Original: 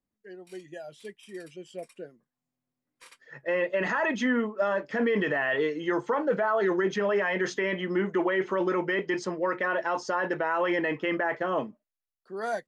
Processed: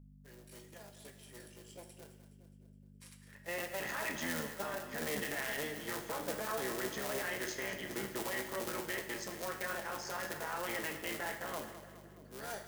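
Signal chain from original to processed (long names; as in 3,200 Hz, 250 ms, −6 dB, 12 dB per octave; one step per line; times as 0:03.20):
sub-harmonics by changed cycles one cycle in 3, muted
first-order pre-emphasis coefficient 0.8
mains hum 50 Hz, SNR 13 dB
echo with a time of its own for lows and highs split 470 Hz, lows 630 ms, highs 209 ms, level −12 dB
on a send at −5 dB: convolution reverb, pre-delay 3 ms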